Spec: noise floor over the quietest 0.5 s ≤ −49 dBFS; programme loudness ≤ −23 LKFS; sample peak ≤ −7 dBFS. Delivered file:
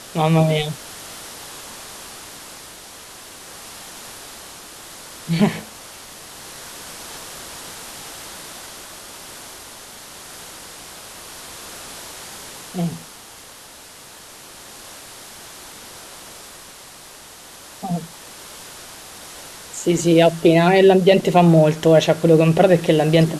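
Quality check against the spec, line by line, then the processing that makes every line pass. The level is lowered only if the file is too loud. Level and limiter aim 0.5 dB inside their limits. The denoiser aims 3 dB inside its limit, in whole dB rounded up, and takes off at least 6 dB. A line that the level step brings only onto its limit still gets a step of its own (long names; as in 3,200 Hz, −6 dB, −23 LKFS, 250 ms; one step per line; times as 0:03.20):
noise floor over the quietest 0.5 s −42 dBFS: out of spec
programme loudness −16.0 LKFS: out of spec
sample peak −2.0 dBFS: out of spec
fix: level −7.5 dB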